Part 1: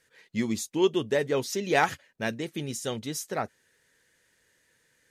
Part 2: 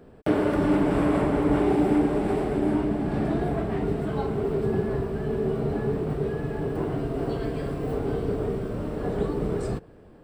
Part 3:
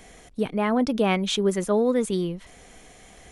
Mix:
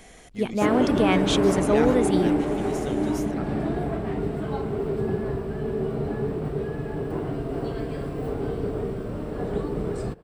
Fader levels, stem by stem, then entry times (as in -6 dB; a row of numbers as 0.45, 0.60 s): -8.0, -1.0, 0.0 dB; 0.00, 0.35, 0.00 s